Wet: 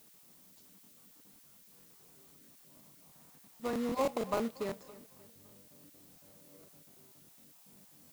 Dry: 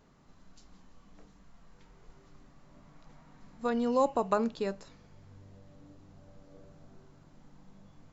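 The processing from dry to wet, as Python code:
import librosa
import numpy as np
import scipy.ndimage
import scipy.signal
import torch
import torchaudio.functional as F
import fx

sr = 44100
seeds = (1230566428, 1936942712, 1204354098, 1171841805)

p1 = fx.spec_dropout(x, sr, seeds[0], share_pct=22)
p2 = scipy.signal.sosfilt(scipy.signal.butter(2, 170.0, 'highpass', fs=sr, output='sos'), p1)
p3 = fx.sample_hold(p2, sr, seeds[1], rate_hz=1600.0, jitter_pct=20)
p4 = p2 + (p3 * librosa.db_to_amplitude(-5.0))
p5 = fx.dmg_noise_colour(p4, sr, seeds[2], colour='blue', level_db=-54.0)
p6 = p5 + fx.echo_feedback(p5, sr, ms=281, feedback_pct=48, wet_db=-19.0, dry=0)
p7 = fx.buffer_crackle(p6, sr, first_s=0.83, period_s=0.16, block=1024, kind='repeat')
y = p7 * librosa.db_to_amplitude(-7.0)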